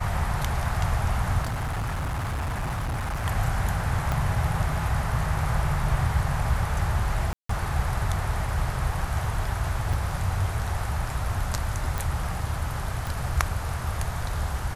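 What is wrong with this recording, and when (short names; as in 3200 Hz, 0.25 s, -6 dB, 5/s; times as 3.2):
1.42–3.26 clipped -25.5 dBFS
4.12 pop -13 dBFS
7.33–7.49 gap 0.164 s
9.93 gap 4.2 ms
11.98 pop
13.07 pop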